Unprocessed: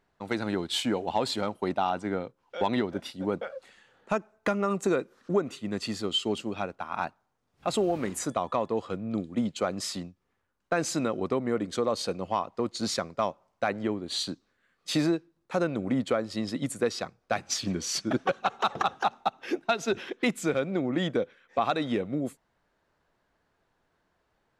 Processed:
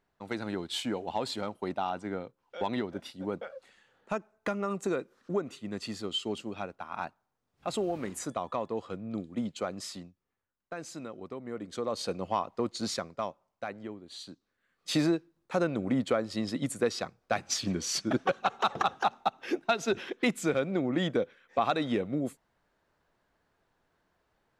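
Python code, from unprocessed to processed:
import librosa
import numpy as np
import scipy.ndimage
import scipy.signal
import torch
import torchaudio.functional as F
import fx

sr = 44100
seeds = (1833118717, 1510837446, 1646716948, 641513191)

y = fx.gain(x, sr, db=fx.line((9.6, -5.0), (10.76, -13.0), (11.35, -13.0), (12.15, -1.5), (12.65, -1.5), (14.19, -14.0), (14.93, -1.0)))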